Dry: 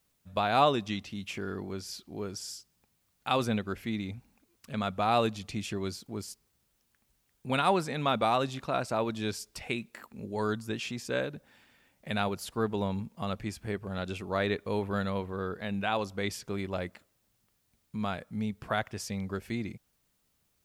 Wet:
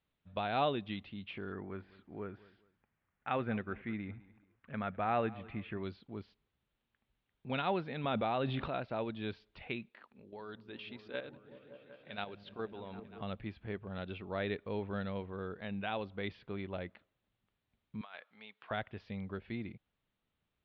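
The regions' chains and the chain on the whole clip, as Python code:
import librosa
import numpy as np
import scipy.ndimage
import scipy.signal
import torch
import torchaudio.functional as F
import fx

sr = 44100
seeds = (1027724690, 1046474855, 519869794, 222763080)

y = fx.chain(x, sr, fx.lowpass_res(hz=1800.0, q=1.9),
    fx.echo_feedback(ms=205, feedback_pct=31, wet_db=-20.0), at=(1.52, 5.83))
y = fx.chain(y, sr, fx.lowpass(hz=3500.0, slope=6),
    fx.env_flatten(amount_pct=70), at=(8.04, 8.68))
y = fx.chain(y, sr, fx.bass_treble(bass_db=-8, treble_db=7),
    fx.level_steps(step_db=10),
    fx.echo_opening(ms=189, hz=200, octaves=1, feedback_pct=70, wet_db=-6), at=(9.89, 13.21))
y = fx.chain(y, sr, fx.highpass(hz=940.0, slope=12),
    fx.high_shelf(hz=7800.0, db=4.5),
    fx.over_compress(threshold_db=-41.0, ratio=-0.5), at=(18.01, 18.71))
y = scipy.signal.sosfilt(scipy.signal.butter(8, 3800.0, 'lowpass', fs=sr, output='sos'), y)
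y = fx.dynamic_eq(y, sr, hz=1100.0, q=2.4, threshold_db=-43.0, ratio=4.0, max_db=-5)
y = y * 10.0 ** (-6.5 / 20.0)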